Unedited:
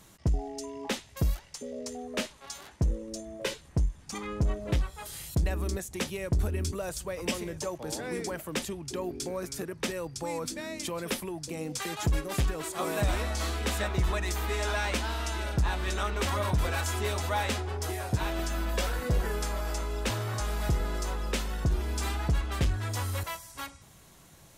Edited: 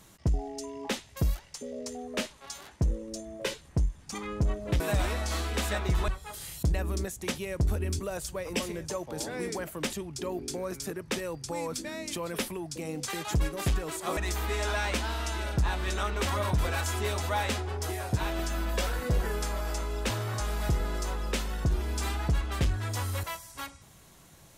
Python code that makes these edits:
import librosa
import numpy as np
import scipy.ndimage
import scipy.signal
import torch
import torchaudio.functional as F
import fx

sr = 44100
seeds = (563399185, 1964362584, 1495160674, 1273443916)

y = fx.edit(x, sr, fx.move(start_s=12.89, length_s=1.28, to_s=4.8), tone=tone)